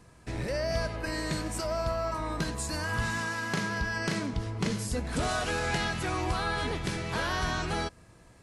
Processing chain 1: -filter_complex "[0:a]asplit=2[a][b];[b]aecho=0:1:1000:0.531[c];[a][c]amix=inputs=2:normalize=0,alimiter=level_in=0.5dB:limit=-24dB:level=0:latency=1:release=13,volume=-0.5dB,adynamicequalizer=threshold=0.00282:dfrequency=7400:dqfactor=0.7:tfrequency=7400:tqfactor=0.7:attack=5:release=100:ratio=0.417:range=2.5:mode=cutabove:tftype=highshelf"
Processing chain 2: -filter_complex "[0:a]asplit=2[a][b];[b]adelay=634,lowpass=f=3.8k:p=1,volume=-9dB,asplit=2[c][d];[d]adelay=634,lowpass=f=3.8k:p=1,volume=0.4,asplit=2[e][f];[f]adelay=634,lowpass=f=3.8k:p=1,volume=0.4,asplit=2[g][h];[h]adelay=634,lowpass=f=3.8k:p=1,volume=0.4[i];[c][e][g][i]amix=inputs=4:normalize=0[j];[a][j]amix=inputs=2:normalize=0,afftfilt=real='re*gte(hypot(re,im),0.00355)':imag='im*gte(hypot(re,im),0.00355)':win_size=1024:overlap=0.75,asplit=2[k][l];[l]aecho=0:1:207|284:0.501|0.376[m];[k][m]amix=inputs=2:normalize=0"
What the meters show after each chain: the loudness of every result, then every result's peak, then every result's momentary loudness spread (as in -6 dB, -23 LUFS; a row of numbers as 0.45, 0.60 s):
-33.0, -29.5 LUFS; -24.5, -16.5 dBFS; 2, 3 LU